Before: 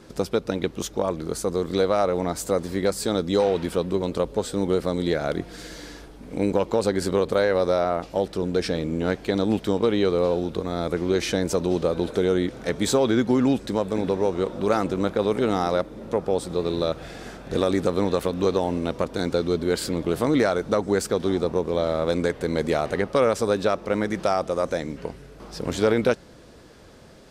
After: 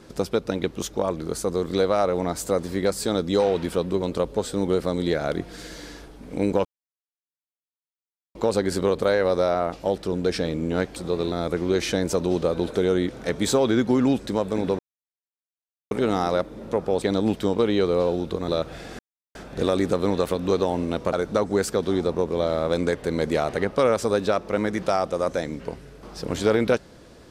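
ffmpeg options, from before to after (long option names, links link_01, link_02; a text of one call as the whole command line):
ffmpeg -i in.wav -filter_complex "[0:a]asplit=10[link_01][link_02][link_03][link_04][link_05][link_06][link_07][link_08][link_09][link_10];[link_01]atrim=end=6.65,asetpts=PTS-STARTPTS,afade=type=out:start_time=6.646:duration=0.004:curve=hsin,apad=pad_dur=1.7[link_11];[link_02]atrim=start=6.65:end=9.262,asetpts=PTS-STARTPTS,afade=type=in:duration=0.004:curve=hsin[link_12];[link_03]atrim=start=16.418:end=16.782[link_13];[link_04]atrim=start=10.718:end=14.19,asetpts=PTS-STARTPTS,afade=type=out:start_time=3.468:duration=0.004:curve=hsin[link_14];[link_05]atrim=start=14.19:end=15.31,asetpts=PTS-STARTPTS,volume=0[link_15];[link_06]atrim=start=15.31:end=16.422,asetpts=PTS-STARTPTS,afade=type=in:duration=0.004:curve=hsin[link_16];[link_07]atrim=start=9.258:end=10.722[link_17];[link_08]atrim=start=16.778:end=17.29,asetpts=PTS-STARTPTS,afade=type=out:start_time=0.508:duration=0.004:curve=hsin,apad=pad_dur=0.36[link_18];[link_09]atrim=start=17.29:end=19.072,asetpts=PTS-STARTPTS,afade=type=in:duration=0.004:curve=hsin[link_19];[link_10]atrim=start=20.498[link_20];[link_11][link_12]concat=n=2:v=0:a=1[link_21];[link_21][link_13]acrossfade=duration=0.004:curve1=hsin:curve2=hsin[link_22];[link_14][link_15][link_16]concat=n=3:v=0:a=1[link_23];[link_22][link_23]acrossfade=duration=0.004:curve1=hsin:curve2=hsin[link_24];[link_24][link_17]acrossfade=duration=0.004:curve1=hsin:curve2=hsin[link_25];[link_18][link_19]concat=n=2:v=0:a=1[link_26];[link_25][link_26]acrossfade=duration=0.004:curve1=hsin:curve2=hsin[link_27];[link_27][link_20]acrossfade=duration=0.004:curve1=hsin:curve2=hsin" out.wav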